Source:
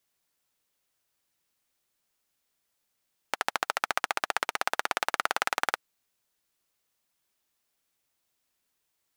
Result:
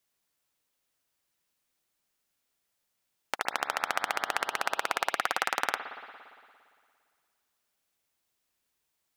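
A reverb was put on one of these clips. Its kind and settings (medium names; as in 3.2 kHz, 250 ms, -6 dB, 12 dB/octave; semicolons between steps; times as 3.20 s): spring tank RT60 2.1 s, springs 57 ms, chirp 55 ms, DRR 7.5 dB; trim -1.5 dB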